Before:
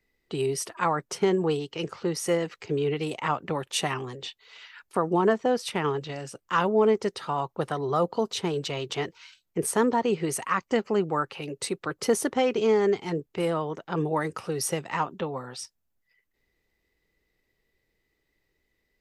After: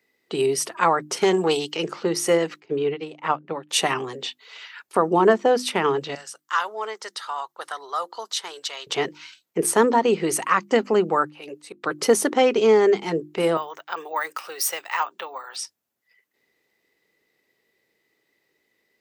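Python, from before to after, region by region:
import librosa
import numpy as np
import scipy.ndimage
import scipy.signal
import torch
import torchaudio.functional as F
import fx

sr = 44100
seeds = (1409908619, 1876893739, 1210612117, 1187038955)

y = fx.chain(x, sr, fx.tube_stage(drive_db=16.0, bias=0.4),
    fx.high_shelf(hz=2300.0, db=10.5), at=(1.17, 1.77))
y = fx.chain(y, sr, fx.air_absorb(metres=110.0),
    fx.upward_expand(threshold_db=-35.0, expansion=2.5), at=(2.6, 3.69))
y = fx.chain(y, sr, fx.highpass(hz=1300.0, slope=12),
    fx.peak_eq(hz=2500.0, db=-8.0, octaves=0.5), at=(6.15, 8.87))
y = fx.chain(y, sr, fx.low_shelf(hz=240.0, db=-11.5),
    fx.auto_swell(attack_ms=275.0), at=(11.28, 11.84))
y = fx.chain(y, sr, fx.highpass(hz=1000.0, slope=12),
    fx.resample_bad(factor=2, down='filtered', up='hold'), at=(13.57, 15.56))
y = scipy.signal.sosfilt(scipy.signal.butter(2, 220.0, 'highpass', fs=sr, output='sos'), y)
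y = fx.hum_notches(y, sr, base_hz=50, count=7)
y = y * librosa.db_to_amplitude(6.5)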